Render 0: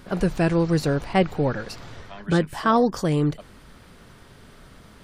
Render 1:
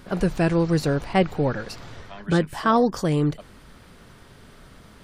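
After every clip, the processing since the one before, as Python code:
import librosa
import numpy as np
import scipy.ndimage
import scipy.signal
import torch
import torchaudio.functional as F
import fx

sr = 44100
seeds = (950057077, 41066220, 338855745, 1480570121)

y = x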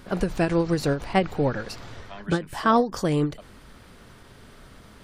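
y = fx.peak_eq(x, sr, hz=160.0, db=-4.5, octaves=0.22)
y = fx.end_taper(y, sr, db_per_s=200.0)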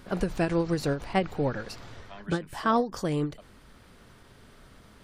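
y = fx.rider(x, sr, range_db=10, speed_s=2.0)
y = y * librosa.db_to_amplitude(-5.0)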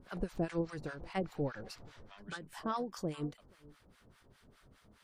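y = x + 10.0 ** (-23.0 / 20.0) * np.pad(x, (int(480 * sr / 1000.0), 0))[:len(x)]
y = fx.harmonic_tremolo(y, sr, hz=4.9, depth_pct=100, crossover_hz=840.0)
y = y * librosa.db_to_amplitude(-6.0)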